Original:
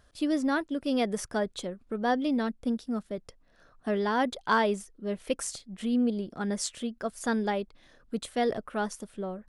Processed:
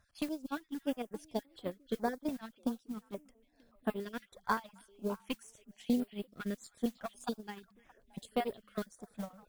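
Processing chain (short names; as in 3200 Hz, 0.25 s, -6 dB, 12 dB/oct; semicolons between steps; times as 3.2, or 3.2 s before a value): random spectral dropouts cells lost 28%; compressor 12:1, threshold -41 dBFS, peak gain reduction 21.5 dB; delay with a stepping band-pass 0.313 s, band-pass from 2700 Hz, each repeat -1.4 oct, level -5 dB; added harmonics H 3 -30 dB, 4 -20 dB, 6 -27 dB, 8 -31 dB, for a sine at -28.5 dBFS; gate -41 dBFS, range -22 dB; modulation noise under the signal 23 dB; stepped notch 3.5 Hz 390–6200 Hz; gain +16 dB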